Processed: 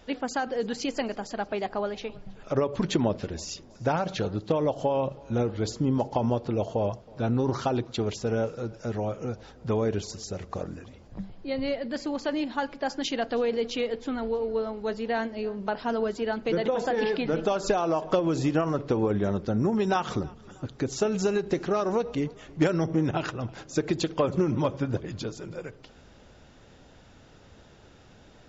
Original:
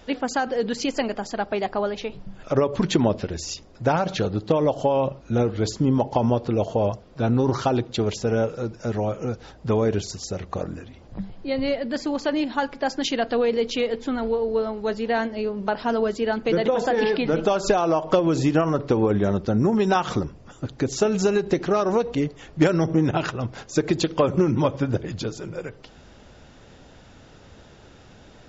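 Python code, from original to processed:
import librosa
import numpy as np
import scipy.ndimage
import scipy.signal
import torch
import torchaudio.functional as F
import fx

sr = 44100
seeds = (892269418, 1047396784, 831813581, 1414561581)

y = fx.echo_feedback(x, sr, ms=320, feedback_pct=49, wet_db=-24)
y = y * 10.0 ** (-5.0 / 20.0)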